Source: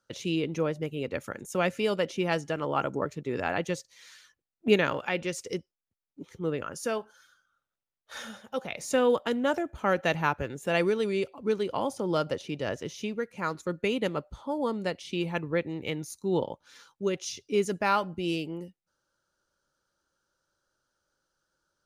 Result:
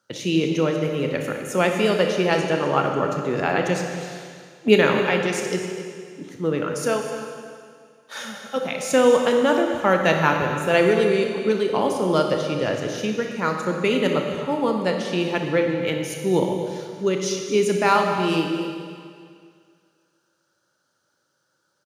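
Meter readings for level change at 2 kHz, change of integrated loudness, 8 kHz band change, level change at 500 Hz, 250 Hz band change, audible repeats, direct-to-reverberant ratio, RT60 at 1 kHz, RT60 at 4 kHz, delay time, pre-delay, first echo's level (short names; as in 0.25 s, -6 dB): +8.5 dB, +8.5 dB, +8.5 dB, +9.0 dB, +8.5 dB, 1, 2.5 dB, 2.1 s, 2.0 s, 0.253 s, 27 ms, -15.5 dB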